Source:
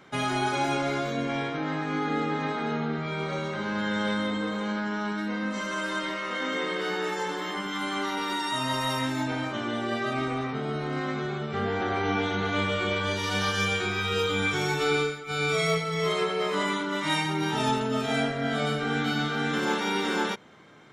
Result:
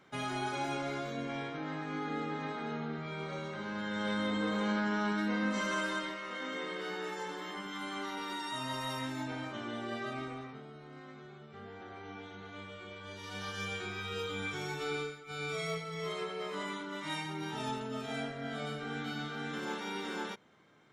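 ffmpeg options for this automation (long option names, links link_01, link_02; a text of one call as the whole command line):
ffmpeg -i in.wav -af "volume=6.5dB,afade=type=in:start_time=3.9:duration=0.7:silence=0.446684,afade=type=out:start_time=5.71:duration=0.45:silence=0.421697,afade=type=out:start_time=10.04:duration=0.67:silence=0.298538,afade=type=in:start_time=12.98:duration=0.78:silence=0.375837" out.wav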